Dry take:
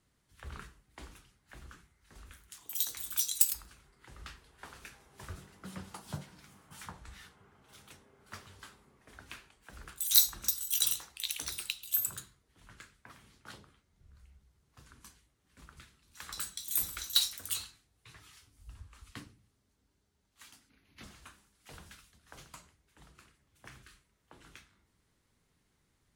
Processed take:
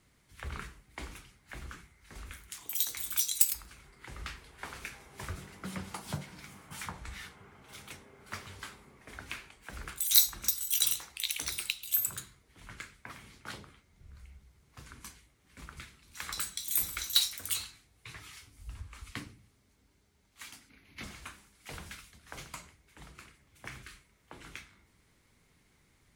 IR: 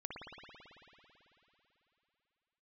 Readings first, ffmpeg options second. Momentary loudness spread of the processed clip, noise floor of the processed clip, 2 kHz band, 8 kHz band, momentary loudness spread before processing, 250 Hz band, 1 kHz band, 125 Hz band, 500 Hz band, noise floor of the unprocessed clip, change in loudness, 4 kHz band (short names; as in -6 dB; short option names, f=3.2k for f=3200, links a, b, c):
22 LU, -69 dBFS, +6.0 dB, +1.5 dB, 23 LU, +5.0 dB, +5.0 dB, +4.5 dB, +5.0 dB, -76 dBFS, -1.0 dB, +1.5 dB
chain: -filter_complex "[0:a]equalizer=f=2.2k:w=5.2:g=6.5,asplit=2[a][b];[b]acompressor=threshold=-45dB:ratio=6,volume=1.5dB[c];[a][c]amix=inputs=2:normalize=0"